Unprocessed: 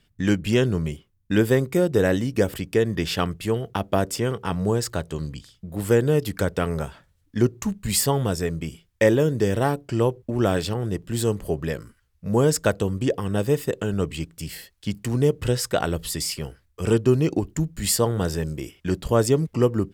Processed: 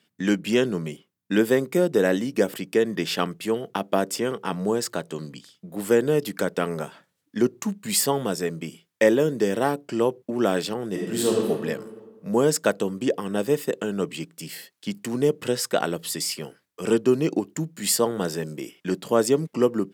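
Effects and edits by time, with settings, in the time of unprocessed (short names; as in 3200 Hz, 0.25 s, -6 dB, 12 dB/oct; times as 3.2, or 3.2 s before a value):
10.89–11.47 reverb throw, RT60 1.6 s, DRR -2.5 dB
whole clip: HPF 180 Hz 24 dB/oct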